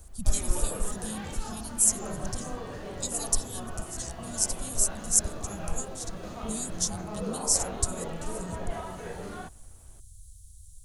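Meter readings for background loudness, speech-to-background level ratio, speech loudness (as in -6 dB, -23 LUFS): -39.0 LUFS, 9.5 dB, -29.5 LUFS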